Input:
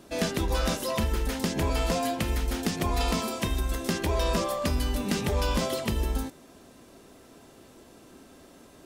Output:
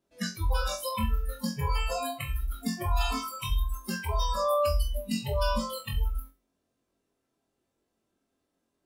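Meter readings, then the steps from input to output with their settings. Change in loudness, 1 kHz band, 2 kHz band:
−2.5 dB, 0.0 dB, −3.5 dB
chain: noise reduction from a noise print of the clip's start 29 dB
flutter between parallel walls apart 3.8 metres, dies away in 0.27 s

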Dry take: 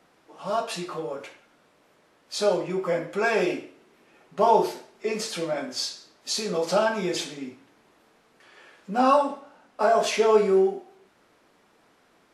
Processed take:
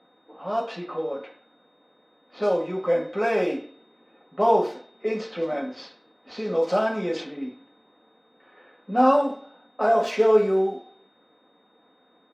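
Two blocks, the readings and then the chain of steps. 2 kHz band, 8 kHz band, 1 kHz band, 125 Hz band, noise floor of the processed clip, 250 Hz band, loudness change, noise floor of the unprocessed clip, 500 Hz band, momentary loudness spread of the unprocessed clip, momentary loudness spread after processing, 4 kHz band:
−3.0 dB, below −15 dB, 0.0 dB, −1.5 dB, −61 dBFS, +1.0 dB, +0.5 dB, −62 dBFS, +1.0 dB, 15 LU, 17 LU, −9.0 dB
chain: running median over 5 samples
Bessel high-pass filter 340 Hz, order 2
low-pass that shuts in the quiet parts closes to 3,000 Hz, open at −22 dBFS
spectral tilt −3 dB per octave
comb filter 4 ms, depth 41%
steady tone 3,700 Hz −56 dBFS
low-pass that shuts in the quiet parts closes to 2,100 Hz, open at −19.5 dBFS

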